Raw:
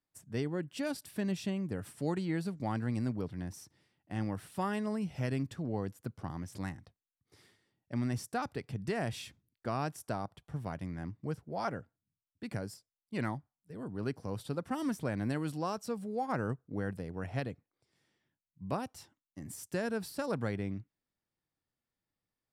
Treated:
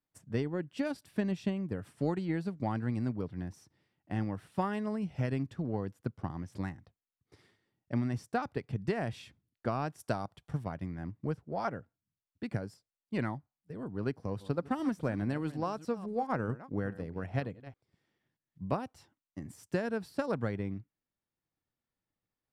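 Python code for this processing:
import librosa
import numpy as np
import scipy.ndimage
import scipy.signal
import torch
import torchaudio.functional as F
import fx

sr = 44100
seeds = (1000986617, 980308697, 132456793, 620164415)

y = fx.high_shelf(x, sr, hz=3200.0, db=10.0, at=(9.99, 10.64))
y = fx.reverse_delay(y, sr, ms=210, wet_db=-13.5, at=(14.17, 18.7))
y = fx.lowpass(y, sr, hz=3000.0, slope=6)
y = fx.transient(y, sr, attack_db=5, sustain_db=-2)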